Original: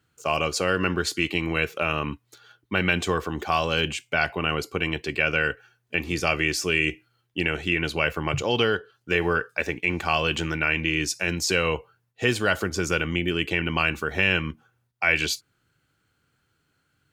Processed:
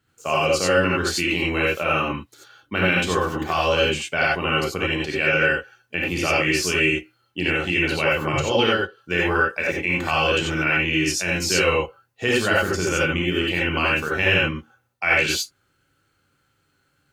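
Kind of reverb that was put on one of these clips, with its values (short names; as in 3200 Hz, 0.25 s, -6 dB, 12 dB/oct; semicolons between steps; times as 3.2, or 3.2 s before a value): non-linear reverb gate 0.11 s rising, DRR -4.5 dB; gain -1.5 dB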